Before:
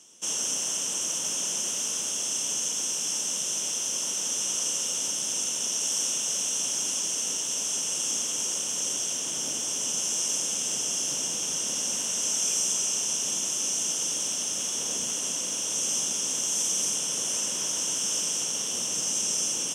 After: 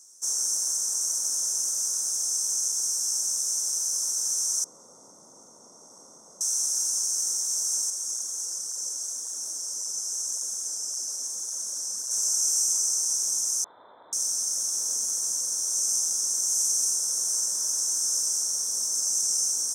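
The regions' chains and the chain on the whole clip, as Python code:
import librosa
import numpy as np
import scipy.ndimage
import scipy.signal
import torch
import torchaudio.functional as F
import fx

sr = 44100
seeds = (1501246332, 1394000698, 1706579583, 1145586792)

y = fx.chain(x, sr, fx.savgol(points=65),
    fx.low_shelf(hz=170.0, db=11.5), at=(4.64, 6.41))
y = fx.chain(y, sr, fx.ellip_highpass(hz=190.0, order=4, stop_db=40),
    fx.high_shelf(hz=11000.0, db=-4.5),
    fx.flanger_cancel(hz=1.8, depth_ms=5.6), at=(7.9, 12.11))
y = fx.chain(y, sr, fx.freq_invert(carrier_hz=3800),
    fx.highpass(hz=41.0, slope=12),
    fx.air_absorb(metres=190.0), at=(13.64, 14.13))
y = scipy.signal.sosfilt(scipy.signal.cheby1(2, 1.0, [1500.0, 5000.0], 'bandstop', fs=sr, output='sos'), y)
y = fx.riaa(y, sr, side='recording')
y = y * 10.0 ** (-8.0 / 20.0)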